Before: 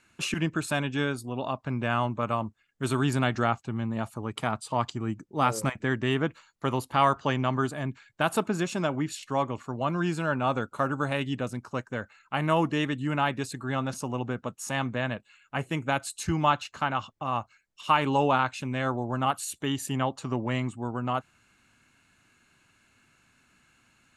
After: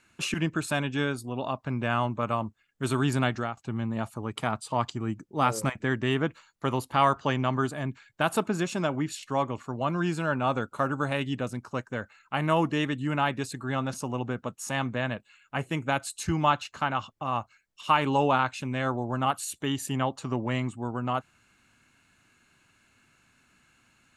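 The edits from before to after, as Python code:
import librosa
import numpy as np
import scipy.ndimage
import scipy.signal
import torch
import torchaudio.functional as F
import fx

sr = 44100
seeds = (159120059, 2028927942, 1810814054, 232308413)

y = fx.edit(x, sr, fx.fade_out_to(start_s=3.26, length_s=0.31, floor_db=-14.5), tone=tone)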